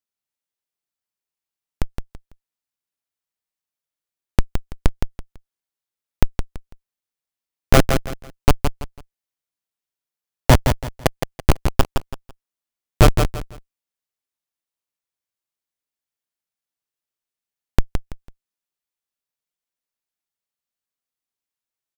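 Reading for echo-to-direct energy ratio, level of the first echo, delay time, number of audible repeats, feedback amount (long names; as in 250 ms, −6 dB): −6.0 dB, −6.5 dB, 166 ms, 3, 27%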